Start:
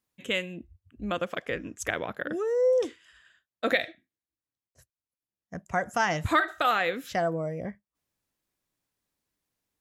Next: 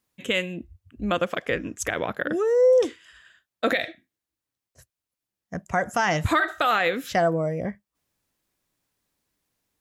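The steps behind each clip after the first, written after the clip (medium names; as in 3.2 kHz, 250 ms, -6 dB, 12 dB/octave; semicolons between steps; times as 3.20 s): peak limiter -18 dBFS, peak gain reduction 8 dB; trim +6 dB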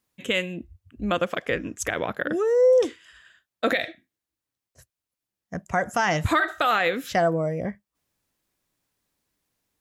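no audible change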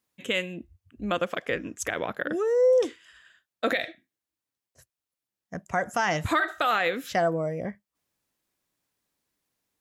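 bass shelf 100 Hz -7.5 dB; trim -2.5 dB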